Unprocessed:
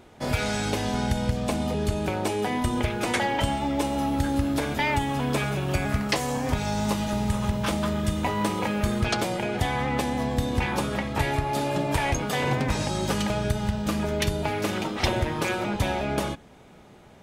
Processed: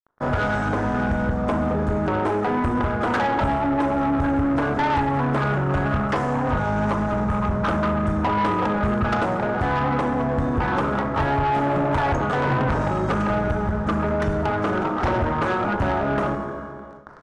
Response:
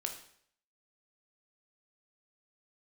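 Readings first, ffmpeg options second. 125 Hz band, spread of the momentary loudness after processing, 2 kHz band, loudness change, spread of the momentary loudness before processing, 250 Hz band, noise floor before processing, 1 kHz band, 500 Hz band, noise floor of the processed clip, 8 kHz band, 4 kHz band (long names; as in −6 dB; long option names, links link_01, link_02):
+3.0 dB, 2 LU, +3.5 dB, +4.0 dB, 2 LU, +4.0 dB, −50 dBFS, +6.5 dB, +4.5 dB, −31 dBFS, below −10 dB, −7.0 dB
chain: -filter_complex "[0:a]equalizer=frequency=4400:width_type=o:width=0.48:gain=-8.5,aeval=exprs='sgn(val(0))*max(abs(val(0))-0.00841,0)':channel_layout=same,asplit=2[link_01][link_02];[1:a]atrim=start_sample=2205,asetrate=30870,aresample=44100,lowpass=6000[link_03];[link_02][link_03]afir=irnorm=-1:irlink=0,volume=2.5dB[link_04];[link_01][link_04]amix=inputs=2:normalize=0,aresample=22050,aresample=44100,highshelf=frequency=1900:width_type=q:width=3:gain=-11,areverse,acompressor=mode=upward:threshold=-21dB:ratio=2.5,areverse,asoftclip=type=tanh:threshold=-16.5dB"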